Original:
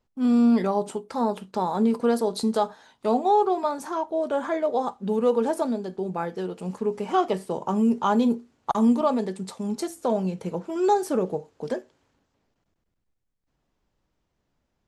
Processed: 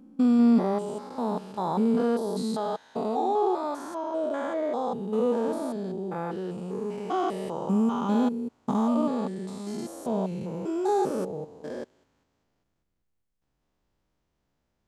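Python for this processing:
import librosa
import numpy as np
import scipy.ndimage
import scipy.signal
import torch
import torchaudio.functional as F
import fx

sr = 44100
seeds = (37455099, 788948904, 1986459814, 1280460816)

y = fx.spec_steps(x, sr, hold_ms=200)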